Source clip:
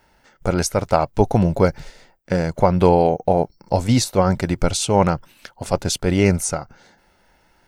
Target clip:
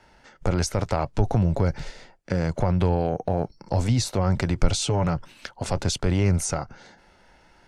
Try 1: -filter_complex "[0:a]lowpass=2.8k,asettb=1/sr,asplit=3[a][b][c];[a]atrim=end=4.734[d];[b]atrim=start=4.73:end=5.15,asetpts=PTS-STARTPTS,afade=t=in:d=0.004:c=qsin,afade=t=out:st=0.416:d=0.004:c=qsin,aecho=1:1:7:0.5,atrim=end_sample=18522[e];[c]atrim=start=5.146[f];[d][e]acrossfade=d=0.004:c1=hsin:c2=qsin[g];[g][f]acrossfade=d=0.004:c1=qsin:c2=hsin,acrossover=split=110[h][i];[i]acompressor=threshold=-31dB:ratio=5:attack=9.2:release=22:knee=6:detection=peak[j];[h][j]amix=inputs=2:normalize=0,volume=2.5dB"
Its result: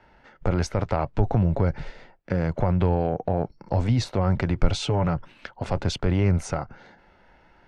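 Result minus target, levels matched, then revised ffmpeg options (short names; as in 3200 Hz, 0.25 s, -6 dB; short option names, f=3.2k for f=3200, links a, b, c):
8000 Hz band -9.5 dB
-filter_complex "[0:a]lowpass=7.8k,asettb=1/sr,asplit=3[a][b][c];[a]atrim=end=4.734[d];[b]atrim=start=4.73:end=5.15,asetpts=PTS-STARTPTS,afade=t=in:d=0.004:c=qsin,afade=t=out:st=0.416:d=0.004:c=qsin,aecho=1:1:7:0.5,atrim=end_sample=18522[e];[c]atrim=start=5.146[f];[d][e]acrossfade=d=0.004:c1=hsin:c2=qsin[g];[g][f]acrossfade=d=0.004:c1=qsin:c2=hsin,acrossover=split=110[h][i];[i]acompressor=threshold=-31dB:ratio=5:attack=9.2:release=22:knee=6:detection=peak[j];[h][j]amix=inputs=2:normalize=0,volume=2.5dB"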